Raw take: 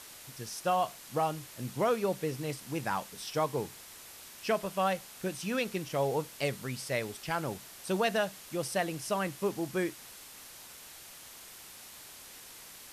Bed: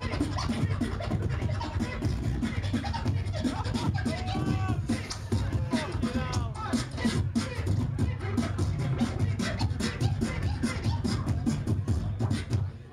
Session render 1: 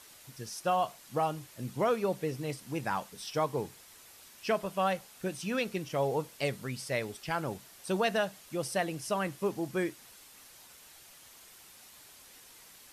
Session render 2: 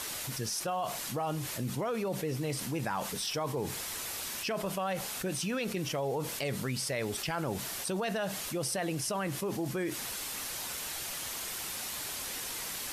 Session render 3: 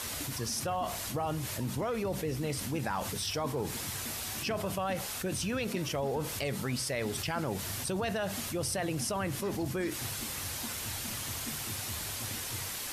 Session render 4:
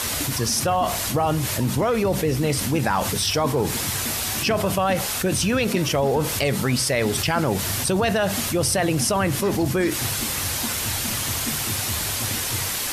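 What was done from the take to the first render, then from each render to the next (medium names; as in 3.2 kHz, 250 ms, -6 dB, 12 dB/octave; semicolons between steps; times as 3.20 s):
noise reduction 6 dB, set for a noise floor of -50 dBFS
peak limiter -26 dBFS, peak gain reduction 7.5 dB; level flattener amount 70%
add bed -16 dB
trim +12 dB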